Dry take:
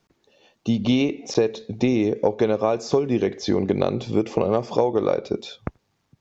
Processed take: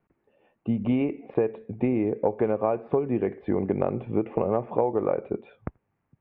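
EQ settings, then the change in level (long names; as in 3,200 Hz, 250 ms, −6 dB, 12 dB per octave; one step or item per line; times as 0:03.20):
Butterworth low-pass 2,600 Hz 36 dB per octave
dynamic equaliser 820 Hz, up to +3 dB, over −32 dBFS, Q 1.6
high-frequency loss of the air 330 metres
−4.0 dB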